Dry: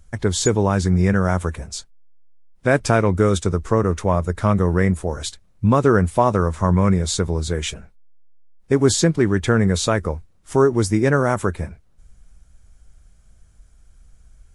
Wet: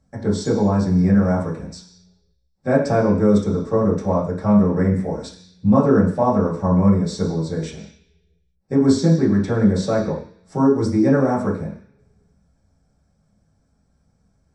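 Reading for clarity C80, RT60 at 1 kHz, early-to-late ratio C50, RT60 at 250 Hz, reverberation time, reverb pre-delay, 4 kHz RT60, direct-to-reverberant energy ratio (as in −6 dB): 10.0 dB, 0.50 s, 7.0 dB, 0.50 s, 0.50 s, 3 ms, 0.85 s, −7.0 dB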